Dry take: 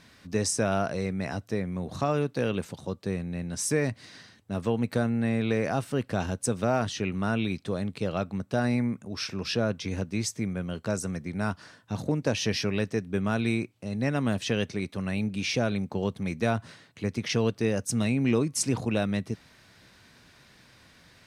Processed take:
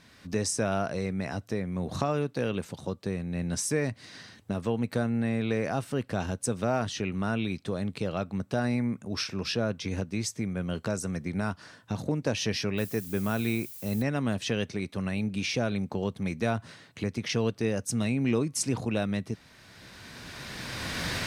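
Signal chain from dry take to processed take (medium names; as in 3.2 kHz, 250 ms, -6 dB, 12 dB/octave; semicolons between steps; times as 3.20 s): recorder AGC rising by 15 dB/s; 12.77–14.01 s: added noise violet -42 dBFS; trim -2 dB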